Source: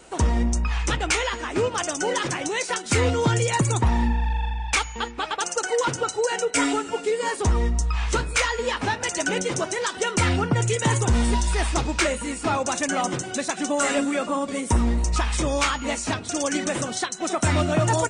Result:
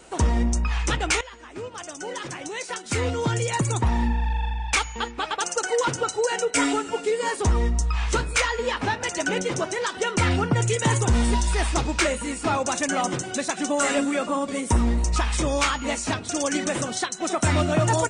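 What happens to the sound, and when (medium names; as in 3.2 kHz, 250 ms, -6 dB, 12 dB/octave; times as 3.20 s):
1.21–4.54 s: fade in, from -16.5 dB
8.41–10.31 s: treble shelf 6.9 kHz -7 dB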